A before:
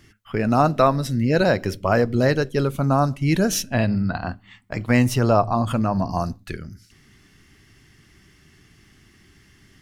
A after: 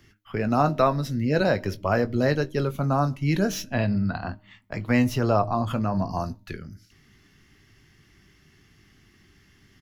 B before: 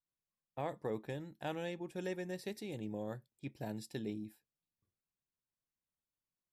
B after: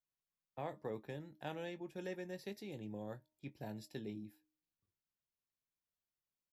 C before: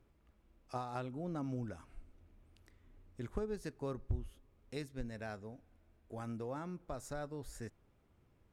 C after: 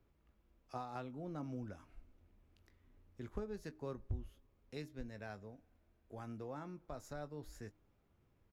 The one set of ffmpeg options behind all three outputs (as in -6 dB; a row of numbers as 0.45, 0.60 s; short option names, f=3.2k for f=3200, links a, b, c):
-filter_complex "[0:a]asplit=2[a][b];[b]adelay=20,volume=-12dB[c];[a][c]amix=inputs=2:normalize=0,bandreject=f=308.9:t=h:w=4,bandreject=f=617.8:t=h:w=4,bandreject=f=926.7:t=h:w=4,acrossover=split=220|4500[d][e][f];[f]asoftclip=type=tanh:threshold=-29dB[g];[d][e][g]amix=inputs=3:normalize=0,equalizer=f=8.7k:t=o:w=0.22:g=-15,volume=-4dB"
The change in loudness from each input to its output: -4.0, -4.0, -4.0 LU